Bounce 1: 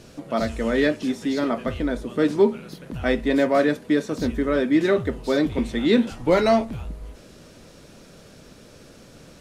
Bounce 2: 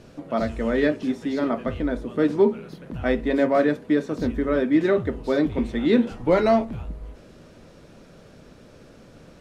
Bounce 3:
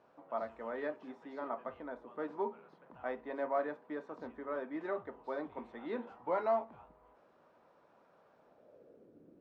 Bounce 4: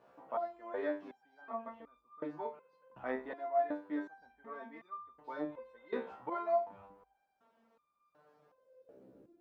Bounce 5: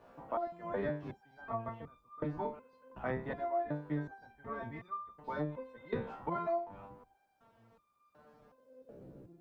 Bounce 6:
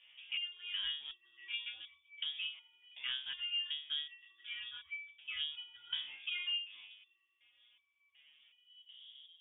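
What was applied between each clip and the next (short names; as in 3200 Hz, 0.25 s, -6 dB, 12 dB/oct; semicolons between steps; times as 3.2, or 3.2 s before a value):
high shelf 3400 Hz -11 dB; de-hum 68.25 Hz, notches 7
band-pass sweep 940 Hz -> 320 Hz, 8.36–9.2; gain -6 dB
stepped resonator 2.7 Hz 65–1200 Hz; gain +10 dB
octaver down 1 oct, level +2 dB; compressor 4:1, threshold -37 dBFS, peak gain reduction 9.5 dB; gain +4.5 dB
low-pass opened by the level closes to 2500 Hz; inverted band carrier 3500 Hz; gain -3.5 dB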